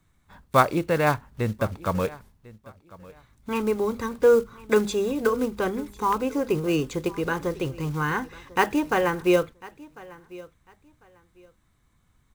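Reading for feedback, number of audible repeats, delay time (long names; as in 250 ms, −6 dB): 22%, 2, 1,048 ms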